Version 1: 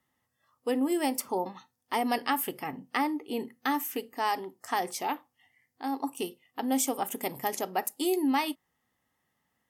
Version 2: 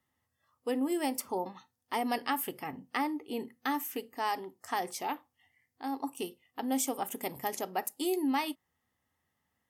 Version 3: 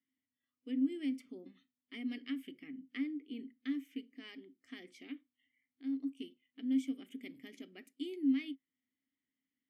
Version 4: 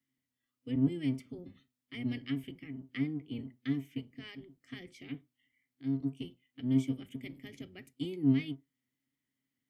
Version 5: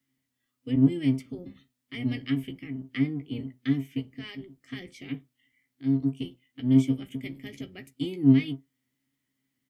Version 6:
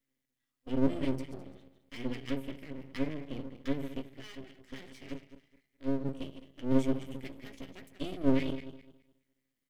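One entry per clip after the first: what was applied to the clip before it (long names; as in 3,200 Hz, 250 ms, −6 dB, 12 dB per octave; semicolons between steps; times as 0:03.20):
parametric band 82 Hz +10.5 dB 0.42 octaves; level −3.5 dB
formant filter i; level +1.5 dB
sub-octave generator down 1 octave, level −4 dB; convolution reverb RT60 0.20 s, pre-delay 3 ms, DRR 16.5 dB; level +3 dB
double-tracking delay 15 ms −9 dB; level +6 dB
feedback delay that plays each chunk backwards 105 ms, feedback 49%, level −9.5 dB; half-wave rectification; level −2.5 dB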